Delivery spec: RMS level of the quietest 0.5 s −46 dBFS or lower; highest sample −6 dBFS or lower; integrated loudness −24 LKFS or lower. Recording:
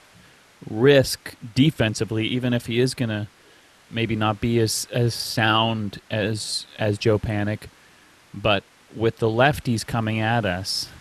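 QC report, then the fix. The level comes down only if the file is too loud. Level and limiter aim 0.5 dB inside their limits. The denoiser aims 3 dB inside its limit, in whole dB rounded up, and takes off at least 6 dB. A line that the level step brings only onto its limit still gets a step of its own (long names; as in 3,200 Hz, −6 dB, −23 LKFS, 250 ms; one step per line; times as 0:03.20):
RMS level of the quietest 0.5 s −53 dBFS: in spec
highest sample −5.0 dBFS: out of spec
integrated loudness −22.5 LKFS: out of spec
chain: level −2 dB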